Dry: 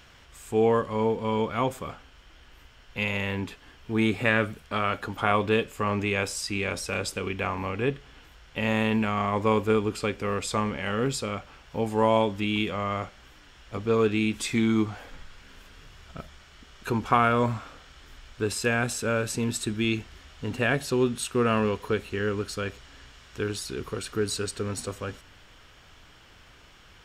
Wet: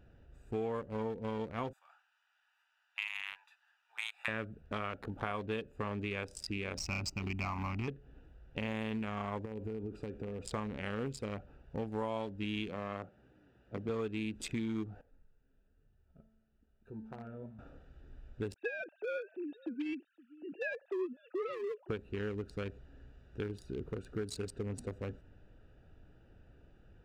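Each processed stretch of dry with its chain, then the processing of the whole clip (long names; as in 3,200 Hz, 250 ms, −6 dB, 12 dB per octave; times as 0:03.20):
0:01.73–0:04.28: Butterworth high-pass 880 Hz 48 dB per octave + high-shelf EQ 5,100 Hz +8.5 dB
0:06.77–0:07.88: leveller curve on the samples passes 2 + phaser with its sweep stopped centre 2,400 Hz, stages 8
0:09.45–0:10.46: downward compressor 8 to 1, threshold −31 dBFS + flutter between parallel walls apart 10.9 metres, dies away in 0.21 s
0:12.68–0:13.89: high-pass filter 120 Hz + high-shelf EQ 5,300 Hz −5 dB
0:15.01–0:17.59: flanger 1.1 Hz, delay 0.8 ms, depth 7.3 ms, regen −52% + tuned comb filter 220 Hz, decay 1.3 s, mix 80%
0:18.54–0:21.89: three sine waves on the formant tracks + high-pass filter 470 Hz 6 dB per octave + single-tap delay 518 ms −23.5 dB
whole clip: adaptive Wiener filter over 41 samples; downward compressor 4 to 1, threshold −33 dBFS; level −2.5 dB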